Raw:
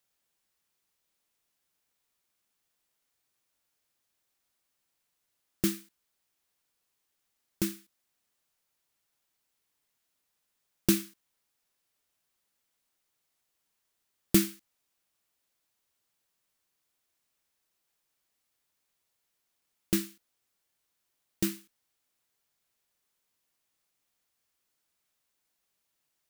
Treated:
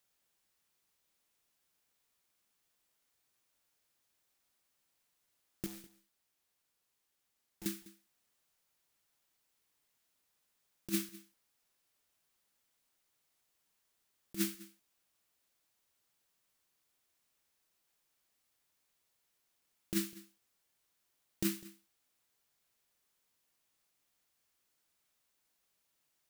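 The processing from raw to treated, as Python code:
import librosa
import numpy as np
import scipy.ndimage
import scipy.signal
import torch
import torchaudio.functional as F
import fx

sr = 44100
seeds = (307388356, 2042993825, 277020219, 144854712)

y = fx.over_compress(x, sr, threshold_db=-28.0, ratio=-0.5)
y = fx.tube_stage(y, sr, drive_db=43.0, bias=0.55, at=(5.66, 7.66))
y = y + 10.0 ** (-19.5 / 20.0) * np.pad(y, (int(202 * sr / 1000.0), 0))[:len(y)]
y = F.gain(torch.from_numpy(y), -3.5).numpy()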